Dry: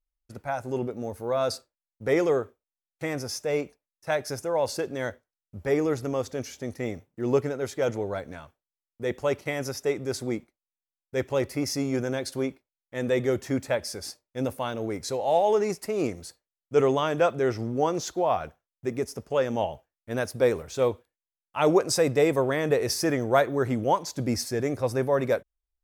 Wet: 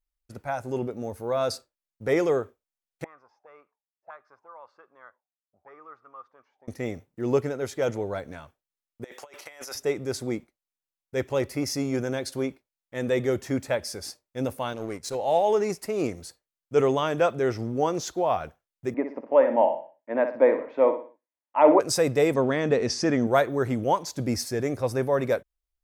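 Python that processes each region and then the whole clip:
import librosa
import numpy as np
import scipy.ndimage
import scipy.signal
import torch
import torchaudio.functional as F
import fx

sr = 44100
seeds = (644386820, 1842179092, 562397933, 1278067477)

y = fx.chain(x, sr, fx.lowpass(hz=4100.0, slope=12),
    fx.auto_wah(base_hz=600.0, top_hz=1200.0, q=11.0, full_db=-26.0, direction='up'), at=(3.04, 6.68))
y = fx.chain(y, sr, fx.highpass(hz=740.0, slope=12),
    fx.transient(attack_db=-7, sustain_db=1),
    fx.over_compress(threshold_db=-41.0, ratio=-0.5), at=(9.04, 9.75))
y = fx.chain(y, sr, fx.lowpass(hz=12000.0, slope=24),
    fx.high_shelf(hz=6500.0, db=5.5),
    fx.power_curve(exponent=1.4), at=(14.73, 15.15))
y = fx.chain(y, sr, fx.cabinet(low_hz=250.0, low_slope=24, high_hz=2200.0, hz=(280.0, 400.0, 590.0, 940.0, 1400.0, 2000.0), db=(9, -6, 9, 10, -5, 5)),
    fx.echo_feedback(ms=60, feedback_pct=36, wet_db=-9), at=(18.94, 21.8))
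y = fx.chain(y, sr, fx.lowpass(hz=6900.0, slope=24),
    fx.peak_eq(hz=230.0, db=10.5, octaves=0.4), at=(22.34, 23.27))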